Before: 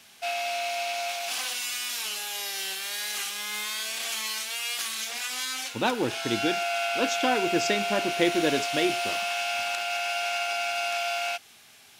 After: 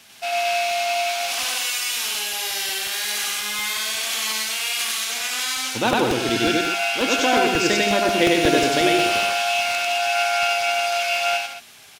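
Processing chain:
loudspeakers that aren't time-aligned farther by 33 metres −1 dB, 58 metres −8 dB, 77 metres −9 dB
regular buffer underruns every 0.18 s, samples 64, repeat, from 0:00.53
level +4 dB

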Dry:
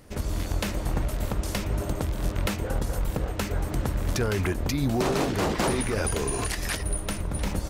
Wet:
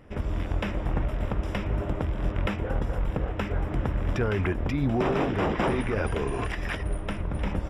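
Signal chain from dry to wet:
Savitzky-Golay smoothing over 25 samples

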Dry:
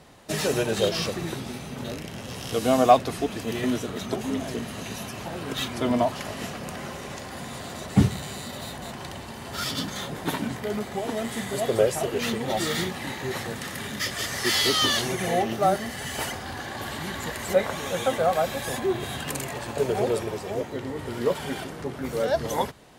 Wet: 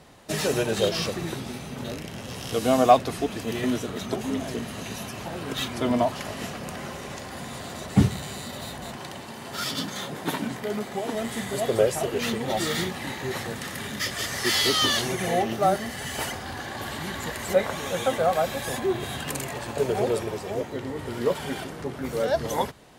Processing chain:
0:08.97–0:11.15: high-pass filter 130 Hz 12 dB per octave

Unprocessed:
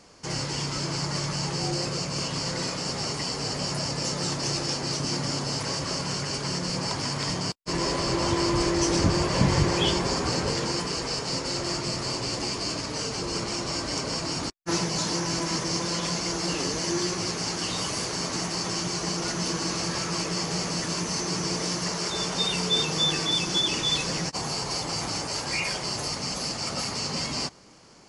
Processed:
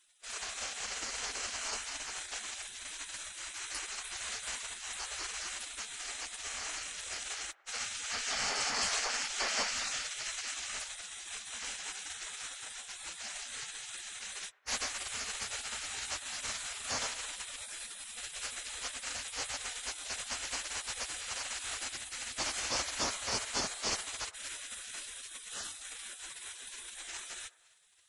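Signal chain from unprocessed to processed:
gate on every frequency bin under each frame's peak −20 dB weak
delay with a band-pass on its return 101 ms, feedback 61%, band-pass 850 Hz, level −18 dB

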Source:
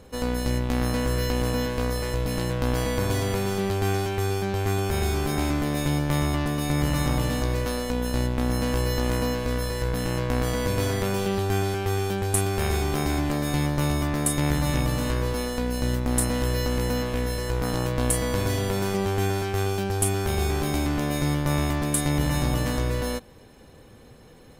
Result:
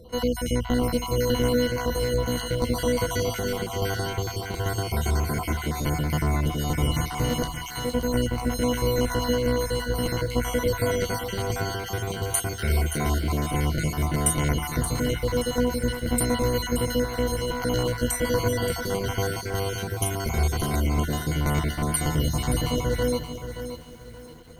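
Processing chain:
time-frequency cells dropped at random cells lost 42%
EQ curve with evenly spaced ripples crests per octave 1.9, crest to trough 15 dB
feedback echo at a low word length 575 ms, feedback 35%, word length 8 bits, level −9.5 dB

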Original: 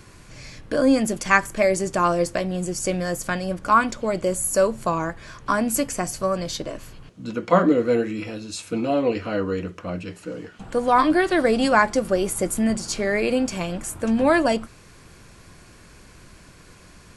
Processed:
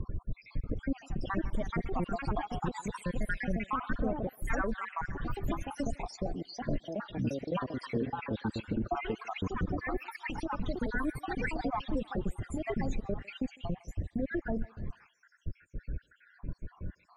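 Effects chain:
time-frequency cells dropped at random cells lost 75%
RIAA equalisation playback
downward compressor 5 to 1, threshold −27 dBFS, peak gain reduction 17 dB
brickwall limiter −24 dBFS, peak gain reduction 8.5 dB
spectral peaks only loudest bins 32
high-frequency loss of the air 54 metres
on a send: feedback echo with a band-pass in the loop 153 ms, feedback 48%, band-pass 1,500 Hz, level −16 dB
on the sum: delay with pitch and tempo change per echo 635 ms, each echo +3 semitones, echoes 2

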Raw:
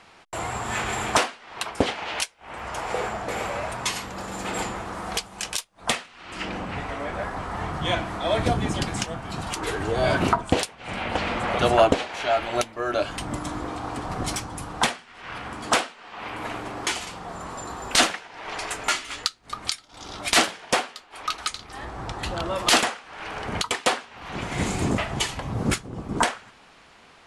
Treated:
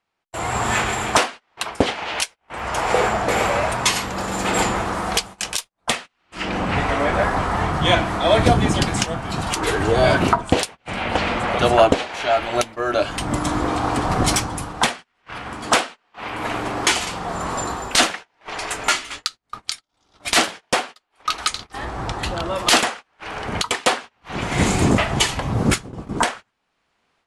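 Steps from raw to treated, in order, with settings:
automatic gain control gain up to 12.5 dB
noise gate −31 dBFS, range −26 dB
level −1 dB

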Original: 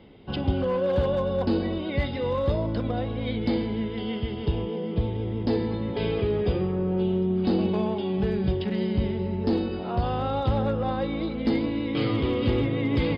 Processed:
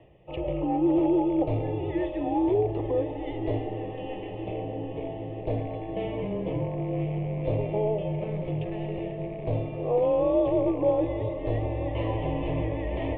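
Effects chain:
loose part that buzzes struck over −25 dBFS, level −34 dBFS
dynamic equaliser 720 Hz, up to +6 dB, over −40 dBFS, Q 1.2
reversed playback
upward compression, threshold −37 dBFS
reversed playback
high-frequency loss of the air 410 metres
phaser with its sweep stopped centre 450 Hz, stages 6
on a send: feedback delay with all-pass diffusion 982 ms, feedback 69%, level −11.5 dB
on the sum: single-sideband voice off tune −220 Hz 370–3,300 Hz
level +5 dB

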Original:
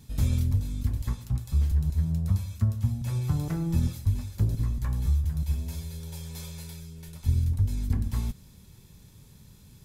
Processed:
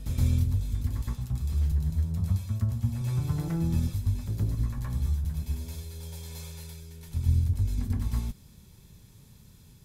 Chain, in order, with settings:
backwards echo 120 ms −4.5 dB
level −2.5 dB

